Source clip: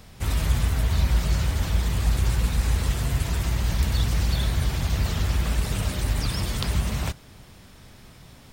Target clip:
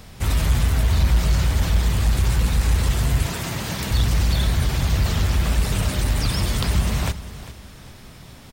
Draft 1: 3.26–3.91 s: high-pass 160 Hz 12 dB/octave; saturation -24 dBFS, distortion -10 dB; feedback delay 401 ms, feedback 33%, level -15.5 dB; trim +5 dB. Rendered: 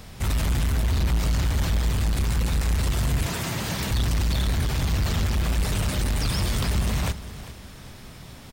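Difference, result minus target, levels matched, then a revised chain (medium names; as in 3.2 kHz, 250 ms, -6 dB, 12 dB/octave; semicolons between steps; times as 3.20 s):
saturation: distortion +12 dB
3.26–3.91 s: high-pass 160 Hz 12 dB/octave; saturation -14 dBFS, distortion -21 dB; feedback delay 401 ms, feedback 33%, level -15.5 dB; trim +5 dB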